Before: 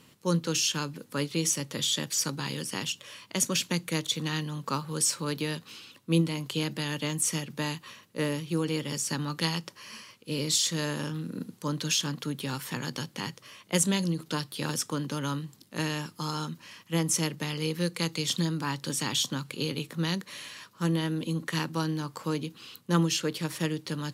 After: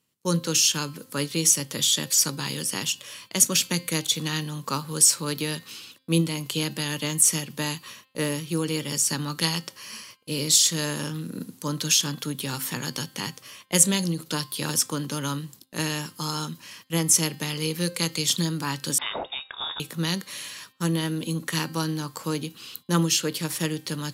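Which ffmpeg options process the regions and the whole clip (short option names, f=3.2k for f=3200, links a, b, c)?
-filter_complex "[0:a]asettb=1/sr,asplit=3[a][b][c];[a]atrim=end=18.984[d];[b]atrim=start=18.98:end=19.8,asetpts=PTS-STARTPTS,afade=t=in:d=0.004:c=qsin,afade=t=out:st=0.816:d=0.004:c=qsin,highpass=f=500:p=1,lowpass=f=3.3k:t=q:w=0.5098,lowpass=f=3.3k:t=q:w=0.6013,lowpass=f=3.3k:t=q:w=0.9,lowpass=f=3.3k:t=q:w=2.563,afreqshift=-3900[e];[c]atrim=start=19.796[f];[d][e]acrossfade=d=0.004:c1=hsin:c2=qsin[g];[g][f]acrossfade=d=0.004:c1=qsin:c2=hsin,agate=range=-22dB:threshold=-51dB:ratio=16:detection=peak,highshelf=f=5.5k:g=10.5,bandreject=f=262.6:t=h:w=4,bandreject=f=525.2:t=h:w=4,bandreject=f=787.8:t=h:w=4,bandreject=f=1.0504k:t=h:w=4,bandreject=f=1.313k:t=h:w=4,bandreject=f=1.5756k:t=h:w=4,bandreject=f=1.8382k:t=h:w=4,bandreject=f=2.1008k:t=h:w=4,bandreject=f=2.3634k:t=h:w=4,bandreject=f=2.626k:t=h:w=4,bandreject=f=2.8886k:t=h:w=4,bandreject=f=3.1512k:t=h:w=4,bandreject=f=3.4138k:t=h:w=4,bandreject=f=3.6764k:t=h:w=4,bandreject=f=3.939k:t=h:w=4,bandreject=f=4.2016k:t=h:w=4,bandreject=f=4.4642k:t=h:w=4,bandreject=f=4.7268k:t=h:w=4,bandreject=f=4.9894k:t=h:w=4,volume=2dB"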